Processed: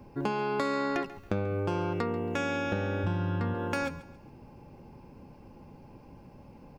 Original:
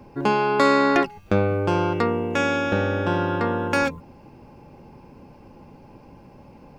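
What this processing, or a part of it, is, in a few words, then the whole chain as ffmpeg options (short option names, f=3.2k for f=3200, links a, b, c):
ASMR close-microphone chain: -filter_complex "[0:a]asplit=3[a][b][c];[a]afade=t=out:st=3.03:d=0.02[d];[b]asubboost=boost=4:cutoff=200,afade=t=in:st=3.03:d=0.02,afade=t=out:st=3.53:d=0.02[e];[c]afade=t=in:st=3.53:d=0.02[f];[d][e][f]amix=inputs=3:normalize=0,lowshelf=f=230:g=4.5,acompressor=threshold=-20dB:ratio=5,highshelf=f=9.2k:g=4.5,aecho=1:1:138|276|414:0.141|0.0466|0.0154,volume=-6.5dB"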